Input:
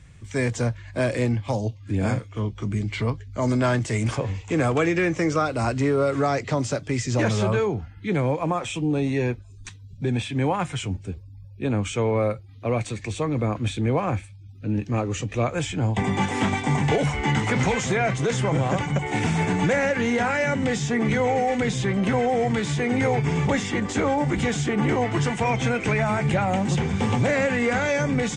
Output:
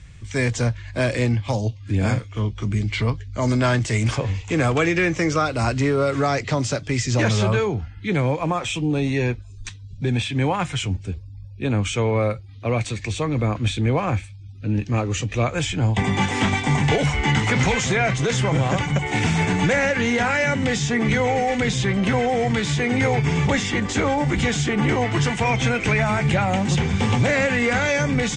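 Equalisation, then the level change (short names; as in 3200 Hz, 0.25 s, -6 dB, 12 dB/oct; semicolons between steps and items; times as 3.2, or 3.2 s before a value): air absorption 67 m; low shelf 90 Hz +10 dB; high shelf 2000 Hz +10.5 dB; 0.0 dB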